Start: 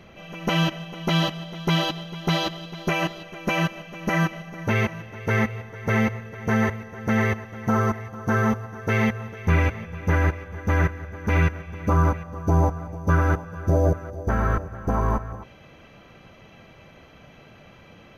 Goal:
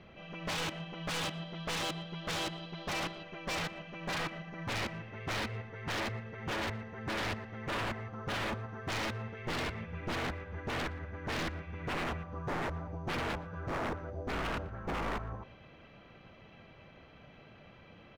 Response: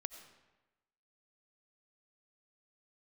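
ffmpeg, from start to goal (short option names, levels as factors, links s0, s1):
-filter_complex "[0:a]lowpass=f=4800:w=0.5412,lowpass=f=4800:w=1.3066,aeval=exprs='0.0708*(abs(mod(val(0)/0.0708+3,4)-2)-1)':c=same,asplit=2[s0][s1];[s1]adelay=117,lowpass=f=3200:p=1,volume=0.112,asplit=2[s2][s3];[s3]adelay=117,lowpass=f=3200:p=1,volume=0.38,asplit=2[s4][s5];[s5]adelay=117,lowpass=f=3200:p=1,volume=0.38[s6];[s2][s4][s6]amix=inputs=3:normalize=0[s7];[s0][s7]amix=inputs=2:normalize=0,volume=0.447"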